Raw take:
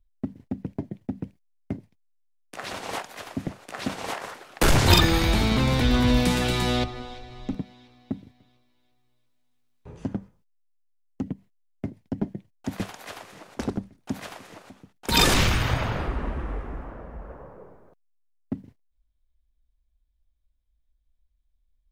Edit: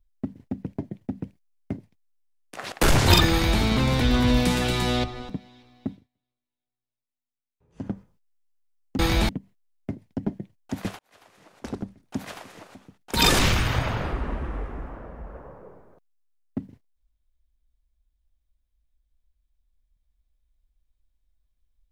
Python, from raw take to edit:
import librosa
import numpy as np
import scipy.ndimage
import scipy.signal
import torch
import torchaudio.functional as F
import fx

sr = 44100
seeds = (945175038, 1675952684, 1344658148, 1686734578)

y = fx.edit(x, sr, fx.cut(start_s=2.72, length_s=1.8),
    fx.duplicate(start_s=5.11, length_s=0.3, to_s=11.24),
    fx.cut(start_s=7.09, length_s=0.45),
    fx.fade_down_up(start_s=8.17, length_s=1.94, db=-23.0, fade_s=0.19, curve='qua'),
    fx.fade_in_span(start_s=12.94, length_s=1.2), tone=tone)